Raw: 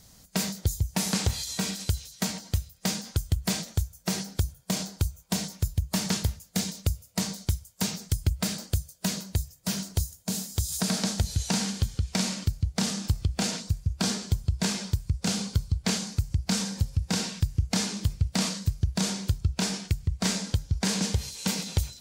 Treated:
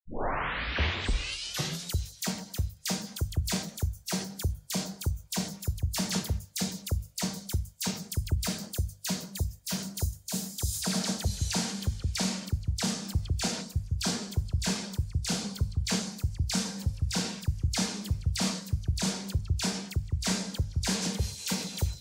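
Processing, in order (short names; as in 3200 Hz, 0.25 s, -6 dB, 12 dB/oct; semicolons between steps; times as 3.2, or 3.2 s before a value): tape start at the beginning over 1.99 s; notches 50/100/150/200 Hz; dispersion lows, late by 55 ms, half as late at 1600 Hz; gain -2 dB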